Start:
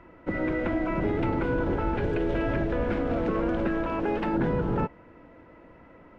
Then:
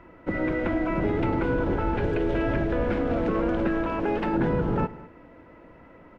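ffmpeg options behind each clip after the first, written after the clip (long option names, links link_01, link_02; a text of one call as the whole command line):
ffmpeg -i in.wav -af "aecho=1:1:106|203:0.112|0.106,volume=1.5dB" out.wav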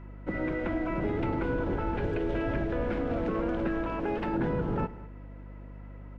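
ffmpeg -i in.wav -af "aeval=exprs='val(0)+0.0126*(sin(2*PI*50*n/s)+sin(2*PI*2*50*n/s)/2+sin(2*PI*3*50*n/s)/3+sin(2*PI*4*50*n/s)/4+sin(2*PI*5*50*n/s)/5)':channel_layout=same,volume=-5dB" out.wav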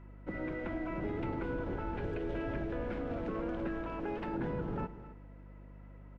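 ffmpeg -i in.wav -af "aecho=1:1:266:0.15,volume=-7dB" out.wav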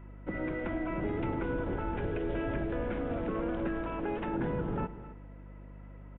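ffmpeg -i in.wav -af "aresample=8000,aresample=44100,volume=3.5dB" out.wav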